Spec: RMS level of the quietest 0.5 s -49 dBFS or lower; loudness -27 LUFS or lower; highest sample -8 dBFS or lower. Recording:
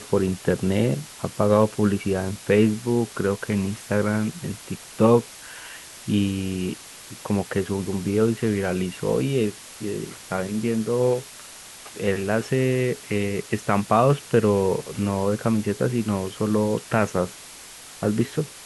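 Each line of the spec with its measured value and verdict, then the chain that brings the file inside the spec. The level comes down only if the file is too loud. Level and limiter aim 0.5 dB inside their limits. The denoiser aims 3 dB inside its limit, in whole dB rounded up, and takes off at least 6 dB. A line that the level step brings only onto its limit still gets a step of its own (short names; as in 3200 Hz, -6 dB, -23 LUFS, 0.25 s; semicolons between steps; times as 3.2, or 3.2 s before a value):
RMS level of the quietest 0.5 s -43 dBFS: fail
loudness -23.5 LUFS: fail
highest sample -5.0 dBFS: fail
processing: denoiser 6 dB, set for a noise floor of -43 dBFS; gain -4 dB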